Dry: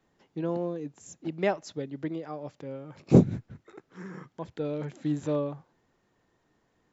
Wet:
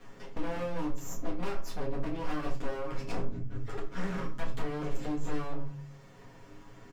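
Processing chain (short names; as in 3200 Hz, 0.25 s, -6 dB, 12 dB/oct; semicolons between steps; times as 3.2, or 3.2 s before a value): minimum comb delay 9.5 ms; low shelf 110 Hz +7.5 dB; notch 3800 Hz, Q 14; comb 7.3 ms, depth 61%; de-hum 47.76 Hz, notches 3; compressor 10:1, threshold -38 dBFS, peak gain reduction 26.5 dB; wavefolder -38.5 dBFS; shoebox room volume 220 m³, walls furnished, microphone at 1.8 m; three-band squash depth 40%; gain +5 dB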